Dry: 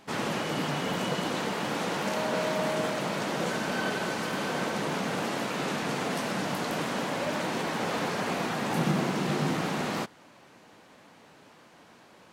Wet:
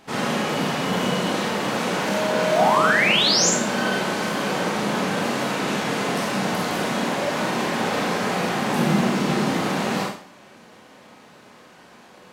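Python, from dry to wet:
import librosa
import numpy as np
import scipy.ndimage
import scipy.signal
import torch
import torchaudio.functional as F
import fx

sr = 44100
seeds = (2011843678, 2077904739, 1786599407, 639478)

y = fx.spec_paint(x, sr, seeds[0], shape='rise', start_s=2.51, length_s=0.99, low_hz=580.0, high_hz=7700.0, level_db=-26.0)
y = fx.rev_schroeder(y, sr, rt60_s=0.47, comb_ms=30, drr_db=-1.5)
y = y * 10.0 ** (3.0 / 20.0)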